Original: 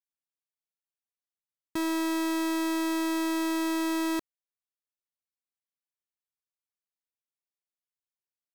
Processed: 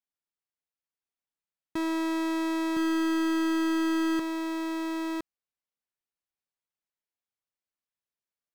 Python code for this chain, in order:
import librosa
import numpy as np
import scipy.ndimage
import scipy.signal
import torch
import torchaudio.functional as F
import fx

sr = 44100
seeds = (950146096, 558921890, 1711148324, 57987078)

y = fx.high_shelf(x, sr, hz=5900.0, db=-11.5)
y = y + 10.0 ** (-3.0 / 20.0) * np.pad(y, (int(1013 * sr / 1000.0), 0))[:len(y)]